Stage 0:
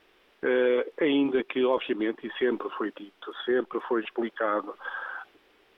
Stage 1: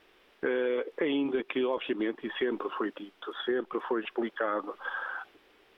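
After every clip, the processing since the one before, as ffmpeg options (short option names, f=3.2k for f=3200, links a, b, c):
-af "acompressor=threshold=-26dB:ratio=4"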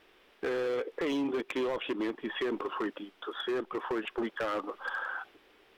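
-af "asoftclip=type=hard:threshold=-27.5dB"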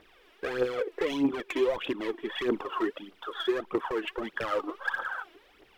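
-af "aphaser=in_gain=1:out_gain=1:delay=3.2:decay=0.67:speed=1.6:type=triangular"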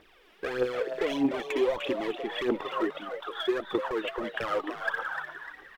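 -filter_complex "[0:a]asplit=5[a][b][c][d][e];[b]adelay=299,afreqshift=150,volume=-9dB[f];[c]adelay=598,afreqshift=300,volume=-17.2dB[g];[d]adelay=897,afreqshift=450,volume=-25.4dB[h];[e]adelay=1196,afreqshift=600,volume=-33.5dB[i];[a][f][g][h][i]amix=inputs=5:normalize=0"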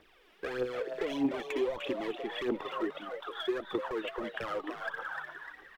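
-filter_complex "[0:a]acrossover=split=390[a][b];[b]acompressor=threshold=-30dB:ratio=6[c];[a][c]amix=inputs=2:normalize=0,volume=-3.5dB"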